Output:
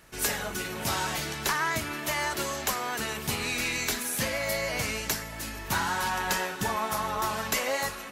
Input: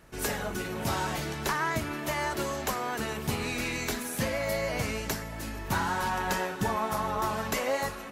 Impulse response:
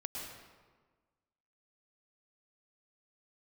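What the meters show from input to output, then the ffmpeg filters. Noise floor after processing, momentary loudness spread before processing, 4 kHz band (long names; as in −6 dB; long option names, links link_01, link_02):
−39 dBFS, 4 LU, +5.0 dB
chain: -af "aeval=exprs='0.158*(cos(1*acos(clip(val(0)/0.158,-1,1)))-cos(1*PI/2))+0.00316*(cos(2*acos(clip(val(0)/0.158,-1,1)))-cos(2*PI/2))':channel_layout=same,tiltshelf=frequency=1300:gain=-4.5,volume=1.5dB"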